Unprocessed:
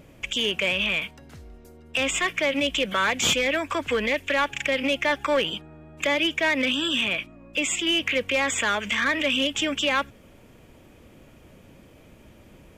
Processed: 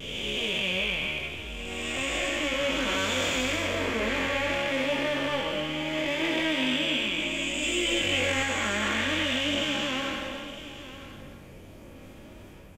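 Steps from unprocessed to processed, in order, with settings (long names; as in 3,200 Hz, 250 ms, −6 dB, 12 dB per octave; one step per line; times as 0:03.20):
spectrum smeared in time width 611 ms
in parallel at +3 dB: brickwall limiter −26 dBFS, peak gain reduction 8.5 dB
on the sum: multi-voice chorus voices 4, 0.3 Hz, delay 21 ms, depth 1.9 ms
pitch vibrato 0.67 Hz 26 cents
0:07.60–0:08.43: double-tracking delay 20 ms −3 dB
on a send: single-tap delay 959 ms −14 dB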